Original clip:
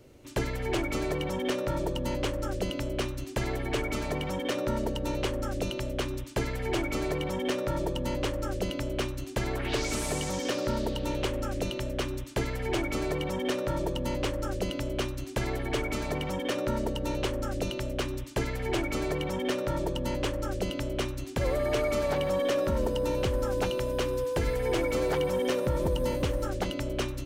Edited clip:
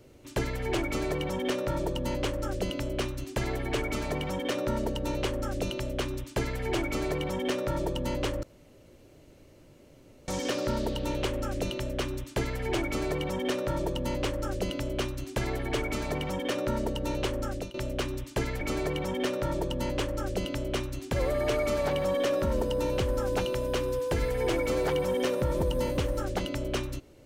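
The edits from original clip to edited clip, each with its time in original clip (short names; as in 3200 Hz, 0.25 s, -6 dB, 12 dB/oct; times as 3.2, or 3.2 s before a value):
8.43–10.28 room tone
17.41–17.74 fade out equal-power, to -20.5 dB
18.61–18.86 cut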